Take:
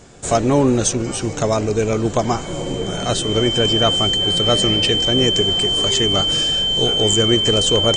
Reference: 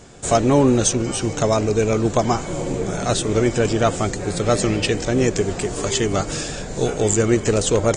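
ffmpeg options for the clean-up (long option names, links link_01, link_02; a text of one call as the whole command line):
ffmpeg -i in.wav -af "bandreject=frequency=3100:width=30" out.wav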